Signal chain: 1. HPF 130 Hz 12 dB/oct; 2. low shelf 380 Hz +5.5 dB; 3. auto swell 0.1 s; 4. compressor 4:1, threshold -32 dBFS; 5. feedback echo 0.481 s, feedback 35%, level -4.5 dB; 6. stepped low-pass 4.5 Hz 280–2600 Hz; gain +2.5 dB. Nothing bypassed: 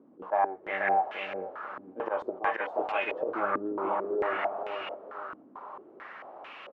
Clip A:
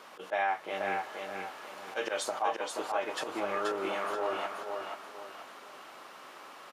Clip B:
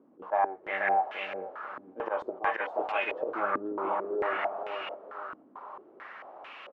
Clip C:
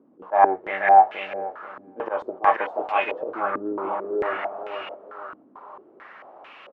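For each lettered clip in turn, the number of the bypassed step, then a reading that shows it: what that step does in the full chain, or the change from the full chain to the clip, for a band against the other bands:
6, 4 kHz band +8.5 dB; 2, 250 Hz band -2.5 dB; 4, mean gain reduction 2.0 dB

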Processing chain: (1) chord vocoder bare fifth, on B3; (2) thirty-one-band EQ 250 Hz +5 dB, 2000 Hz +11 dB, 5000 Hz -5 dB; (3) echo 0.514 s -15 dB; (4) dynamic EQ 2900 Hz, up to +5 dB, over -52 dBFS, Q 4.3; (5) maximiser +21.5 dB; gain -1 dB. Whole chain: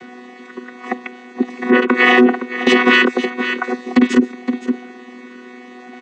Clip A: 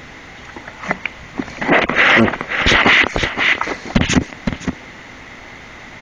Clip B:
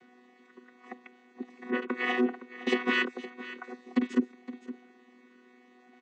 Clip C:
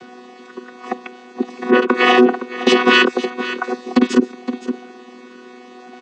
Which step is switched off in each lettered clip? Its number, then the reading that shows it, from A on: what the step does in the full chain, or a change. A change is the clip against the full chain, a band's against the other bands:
1, 8 kHz band +7.5 dB; 5, crest factor change +5.5 dB; 2, 2 kHz band -4.0 dB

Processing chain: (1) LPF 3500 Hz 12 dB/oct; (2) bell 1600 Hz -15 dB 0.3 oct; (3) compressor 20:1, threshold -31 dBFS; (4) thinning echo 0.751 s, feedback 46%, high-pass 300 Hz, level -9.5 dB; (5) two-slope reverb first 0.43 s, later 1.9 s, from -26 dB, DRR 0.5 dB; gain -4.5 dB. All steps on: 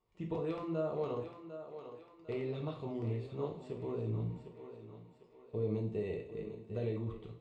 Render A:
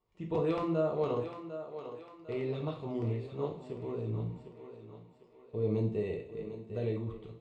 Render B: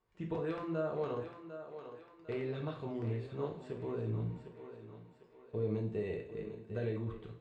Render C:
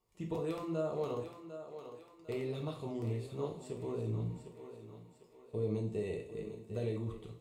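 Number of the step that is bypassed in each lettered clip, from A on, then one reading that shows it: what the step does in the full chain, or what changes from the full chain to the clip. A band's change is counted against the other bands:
3, mean gain reduction 2.0 dB; 2, 2 kHz band +4.5 dB; 1, 4 kHz band +3.0 dB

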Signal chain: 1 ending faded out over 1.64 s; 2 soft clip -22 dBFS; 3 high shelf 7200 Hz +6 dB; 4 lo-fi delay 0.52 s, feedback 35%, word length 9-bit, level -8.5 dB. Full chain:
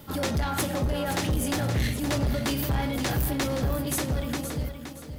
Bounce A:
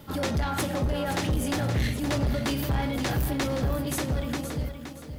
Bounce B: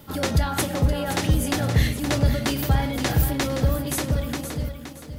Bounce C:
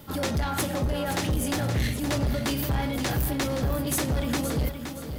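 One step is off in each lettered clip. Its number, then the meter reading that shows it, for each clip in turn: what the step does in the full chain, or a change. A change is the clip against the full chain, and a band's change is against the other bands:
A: 3, 8 kHz band -3.5 dB; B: 2, distortion -8 dB; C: 1, momentary loudness spread change -2 LU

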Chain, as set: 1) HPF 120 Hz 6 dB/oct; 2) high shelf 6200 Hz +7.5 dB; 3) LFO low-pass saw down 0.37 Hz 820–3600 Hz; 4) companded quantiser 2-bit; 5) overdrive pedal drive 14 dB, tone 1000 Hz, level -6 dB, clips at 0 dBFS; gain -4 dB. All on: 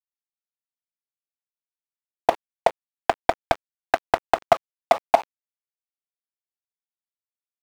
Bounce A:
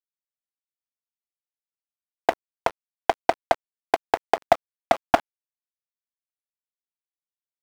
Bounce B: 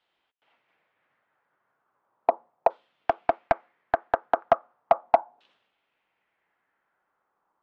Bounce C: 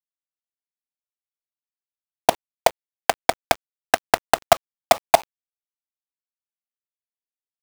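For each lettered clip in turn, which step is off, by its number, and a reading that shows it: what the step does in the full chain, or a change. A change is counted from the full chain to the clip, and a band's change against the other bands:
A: 3, loudness change -1.5 LU; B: 4, distortion -6 dB; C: 5, loudness change +2.5 LU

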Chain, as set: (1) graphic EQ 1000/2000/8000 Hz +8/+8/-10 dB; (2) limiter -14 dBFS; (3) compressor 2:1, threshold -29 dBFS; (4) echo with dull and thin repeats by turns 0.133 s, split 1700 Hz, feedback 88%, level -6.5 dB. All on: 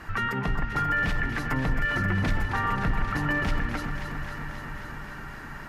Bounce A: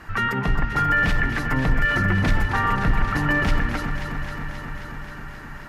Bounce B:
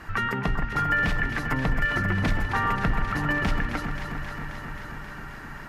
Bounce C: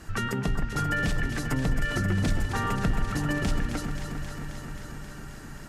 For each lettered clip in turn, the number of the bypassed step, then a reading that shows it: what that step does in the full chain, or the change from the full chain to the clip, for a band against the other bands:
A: 3, mean gain reduction 3.5 dB; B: 2, crest factor change +3.0 dB; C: 1, loudness change -1.0 LU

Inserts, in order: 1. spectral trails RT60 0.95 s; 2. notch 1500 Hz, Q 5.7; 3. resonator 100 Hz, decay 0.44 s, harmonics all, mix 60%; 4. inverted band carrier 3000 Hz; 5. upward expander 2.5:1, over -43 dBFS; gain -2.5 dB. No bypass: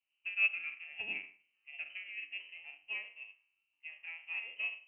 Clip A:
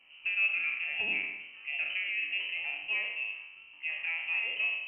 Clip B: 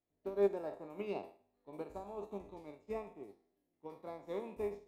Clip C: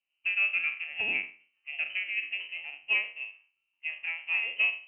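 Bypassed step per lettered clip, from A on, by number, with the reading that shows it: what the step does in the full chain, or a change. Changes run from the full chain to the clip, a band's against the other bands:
5, crest factor change -7.5 dB; 4, loudness change -3.5 LU; 3, crest factor change -4.0 dB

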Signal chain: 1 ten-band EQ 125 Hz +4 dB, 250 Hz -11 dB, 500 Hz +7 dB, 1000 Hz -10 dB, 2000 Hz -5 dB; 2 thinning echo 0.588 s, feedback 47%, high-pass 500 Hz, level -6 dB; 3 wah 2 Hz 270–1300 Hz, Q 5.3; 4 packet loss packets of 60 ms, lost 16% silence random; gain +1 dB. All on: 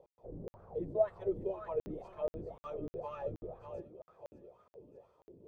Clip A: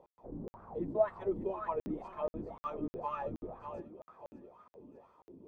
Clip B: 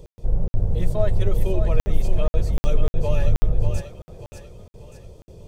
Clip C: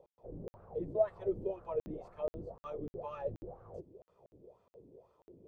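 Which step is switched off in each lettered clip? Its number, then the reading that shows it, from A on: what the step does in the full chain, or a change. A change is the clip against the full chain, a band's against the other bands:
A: 1, momentary loudness spread change +1 LU; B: 3, 125 Hz band +17.0 dB; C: 2, momentary loudness spread change -4 LU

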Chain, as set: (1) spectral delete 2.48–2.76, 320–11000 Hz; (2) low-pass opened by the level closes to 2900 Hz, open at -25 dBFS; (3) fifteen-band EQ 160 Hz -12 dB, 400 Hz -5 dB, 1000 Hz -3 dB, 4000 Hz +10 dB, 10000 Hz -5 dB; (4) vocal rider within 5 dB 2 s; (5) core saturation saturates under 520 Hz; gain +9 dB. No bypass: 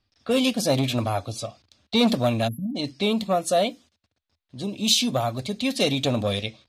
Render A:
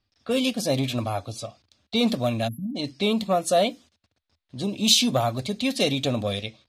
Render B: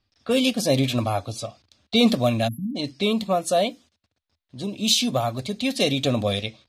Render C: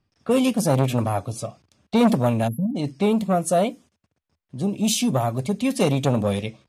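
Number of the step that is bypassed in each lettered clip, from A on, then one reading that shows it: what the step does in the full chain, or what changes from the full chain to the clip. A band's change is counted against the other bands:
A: 4, momentary loudness spread change +4 LU; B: 5, loudness change +1.0 LU; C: 3, momentary loudness spread change -1 LU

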